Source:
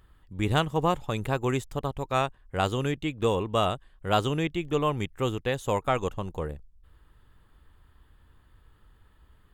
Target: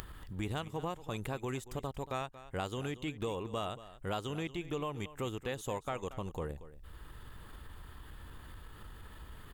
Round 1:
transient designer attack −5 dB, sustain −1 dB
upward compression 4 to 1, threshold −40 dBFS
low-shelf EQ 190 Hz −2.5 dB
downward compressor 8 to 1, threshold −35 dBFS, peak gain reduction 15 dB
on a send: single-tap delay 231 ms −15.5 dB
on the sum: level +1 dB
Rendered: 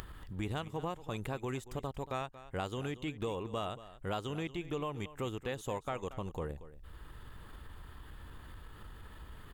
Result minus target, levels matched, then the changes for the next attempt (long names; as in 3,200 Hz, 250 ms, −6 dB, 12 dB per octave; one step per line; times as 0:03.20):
8,000 Hz band −2.5 dB
add after downward compressor: high-shelf EQ 5,000 Hz +4 dB